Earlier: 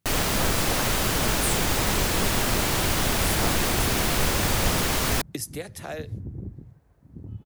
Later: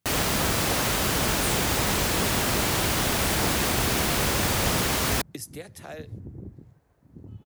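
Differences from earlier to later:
speech -5.0 dB; second sound: add tone controls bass -5 dB, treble +5 dB; master: add high-pass 51 Hz

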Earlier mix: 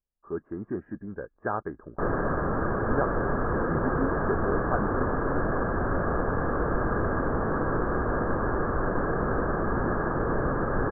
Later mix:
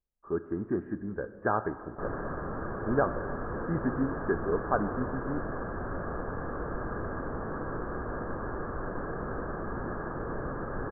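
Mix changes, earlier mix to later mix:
background -8.5 dB; reverb: on, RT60 2.3 s

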